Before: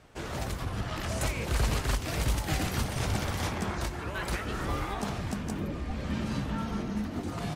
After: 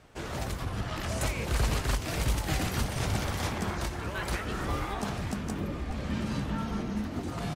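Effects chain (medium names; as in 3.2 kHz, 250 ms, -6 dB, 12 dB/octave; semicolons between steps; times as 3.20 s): delay 895 ms -14.5 dB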